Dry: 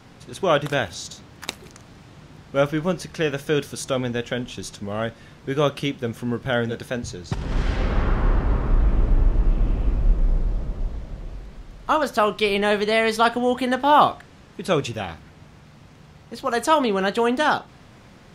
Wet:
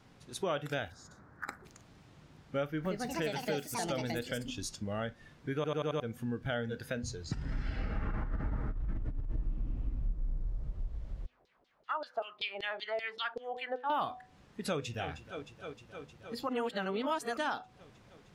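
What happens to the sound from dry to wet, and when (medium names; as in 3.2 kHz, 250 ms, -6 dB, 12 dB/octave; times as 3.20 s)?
0.92–1.65 s: resonant high shelf 2.1 kHz -11.5 dB, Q 3
2.65–4.86 s: ever faster or slower copies 198 ms, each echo +5 st, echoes 2
5.55 s: stutter in place 0.09 s, 5 plays
8.02–9.39 s: compressor with a negative ratio -19 dBFS, ratio -0.5
10.08–10.64 s: peaking EQ 2.9 kHz -5.5 dB 0.81 oct
11.26–13.90 s: LFO band-pass saw down 5.2 Hz 420–4800 Hz
14.67–15.11 s: echo throw 310 ms, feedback 85%, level -13.5 dB
16.49–17.37 s: reverse
whole clip: de-hum 248.7 Hz, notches 4; spectral noise reduction 9 dB; compression 3:1, threshold -31 dBFS; trim -3.5 dB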